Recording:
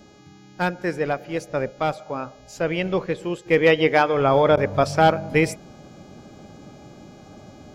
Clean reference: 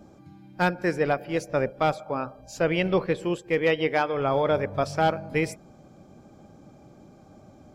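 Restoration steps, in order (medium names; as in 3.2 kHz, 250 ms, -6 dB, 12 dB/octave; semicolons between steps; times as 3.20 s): de-hum 416 Hz, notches 17; interpolate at 4.56 s, 10 ms; trim 0 dB, from 3.46 s -6.5 dB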